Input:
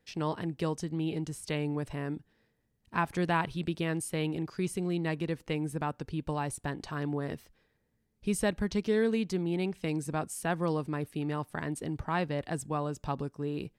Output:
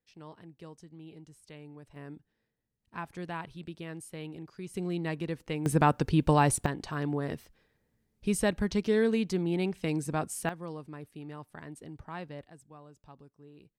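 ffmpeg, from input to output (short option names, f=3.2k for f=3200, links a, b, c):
-af "asetnsamples=n=441:p=0,asendcmd='1.96 volume volume -9.5dB;4.74 volume volume -1.5dB;5.66 volume volume 10dB;6.66 volume volume 1.5dB;10.49 volume volume -10dB;12.47 volume volume -19dB',volume=-16dB"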